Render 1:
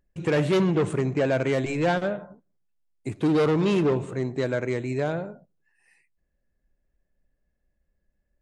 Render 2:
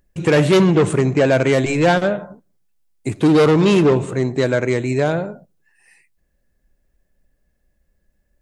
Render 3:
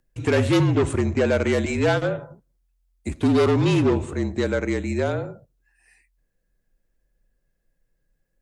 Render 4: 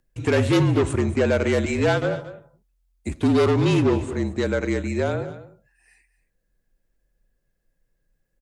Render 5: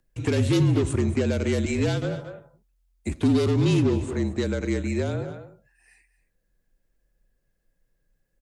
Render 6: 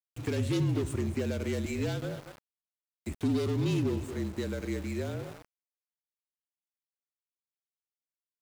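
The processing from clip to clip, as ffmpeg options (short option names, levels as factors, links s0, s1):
-af "highshelf=f=5000:g=5.5,volume=2.66"
-af "afreqshift=-43,volume=0.531"
-af "aecho=1:1:227:0.178"
-filter_complex "[0:a]acrossover=split=360|3000[s0][s1][s2];[s1]acompressor=threshold=0.0251:ratio=6[s3];[s0][s3][s2]amix=inputs=3:normalize=0"
-af "aeval=exprs='val(0)*gte(abs(val(0)),0.0168)':c=same,volume=0.398"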